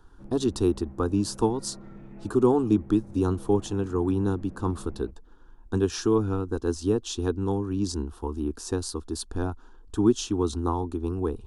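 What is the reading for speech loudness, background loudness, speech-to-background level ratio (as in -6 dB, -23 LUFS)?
-27.5 LUFS, -46.5 LUFS, 19.0 dB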